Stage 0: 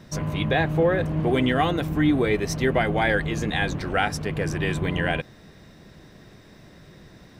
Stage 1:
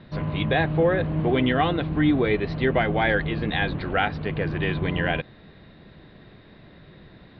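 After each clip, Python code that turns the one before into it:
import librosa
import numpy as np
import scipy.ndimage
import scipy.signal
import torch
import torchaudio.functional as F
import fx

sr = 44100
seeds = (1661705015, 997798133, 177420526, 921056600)

y = scipy.signal.sosfilt(scipy.signal.butter(12, 4400.0, 'lowpass', fs=sr, output='sos'), x)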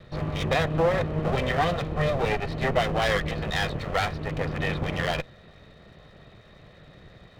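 y = fx.lower_of_two(x, sr, delay_ms=1.6)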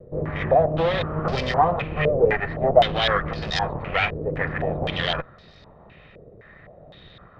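y = fx.filter_held_lowpass(x, sr, hz=3.9, low_hz=480.0, high_hz=5000.0)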